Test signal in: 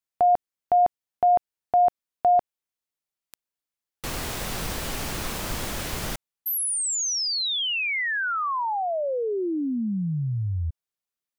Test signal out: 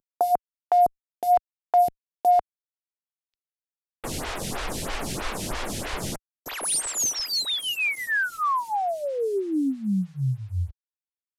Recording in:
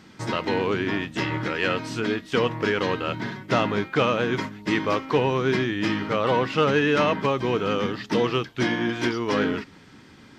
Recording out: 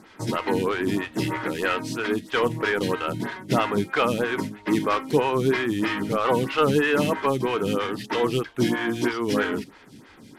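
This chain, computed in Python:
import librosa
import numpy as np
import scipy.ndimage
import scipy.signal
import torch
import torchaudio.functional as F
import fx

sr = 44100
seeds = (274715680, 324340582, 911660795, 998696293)

y = fx.cvsd(x, sr, bps=64000)
y = fx.dynamic_eq(y, sr, hz=590.0, q=2.4, threshold_db=-36.0, ratio=4.0, max_db=-4)
y = fx.stagger_phaser(y, sr, hz=3.1)
y = F.gain(torch.from_numpy(y), 4.0).numpy()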